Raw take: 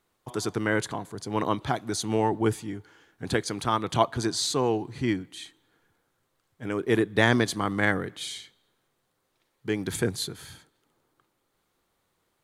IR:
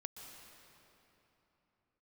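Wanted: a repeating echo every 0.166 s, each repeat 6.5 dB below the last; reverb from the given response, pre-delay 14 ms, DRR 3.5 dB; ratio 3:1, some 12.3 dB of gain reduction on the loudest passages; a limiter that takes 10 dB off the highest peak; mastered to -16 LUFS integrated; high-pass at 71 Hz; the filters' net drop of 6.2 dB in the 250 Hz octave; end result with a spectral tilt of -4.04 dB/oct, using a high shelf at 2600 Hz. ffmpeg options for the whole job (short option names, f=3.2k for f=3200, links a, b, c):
-filter_complex "[0:a]highpass=71,equalizer=f=250:t=o:g=-8.5,highshelf=f=2.6k:g=-7.5,acompressor=threshold=-34dB:ratio=3,alimiter=level_in=5dB:limit=-24dB:level=0:latency=1,volume=-5dB,aecho=1:1:166|332|498|664|830|996:0.473|0.222|0.105|0.0491|0.0231|0.0109,asplit=2[a][b];[1:a]atrim=start_sample=2205,adelay=14[c];[b][c]afir=irnorm=-1:irlink=0,volume=0dB[d];[a][d]amix=inputs=2:normalize=0,volume=23dB"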